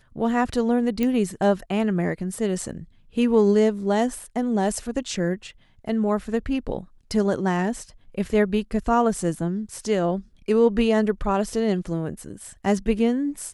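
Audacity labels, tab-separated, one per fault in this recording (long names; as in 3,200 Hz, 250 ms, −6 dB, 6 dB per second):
1.030000	1.030000	click −12 dBFS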